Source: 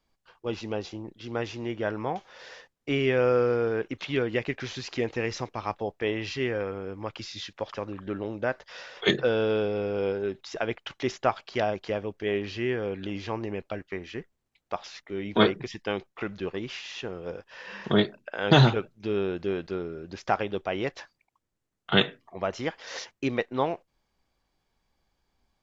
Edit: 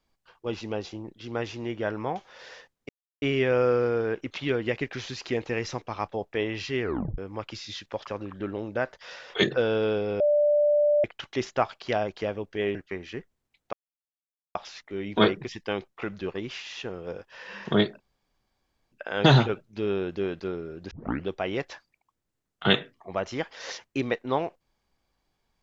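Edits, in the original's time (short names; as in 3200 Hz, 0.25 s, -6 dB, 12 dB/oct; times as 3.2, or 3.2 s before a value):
2.89 insert silence 0.33 s
6.49 tape stop 0.36 s
9.87–10.71 bleep 590 Hz -18 dBFS
12.42–13.76 cut
14.74 insert silence 0.82 s
18.19 insert room tone 0.92 s
20.18 tape start 0.37 s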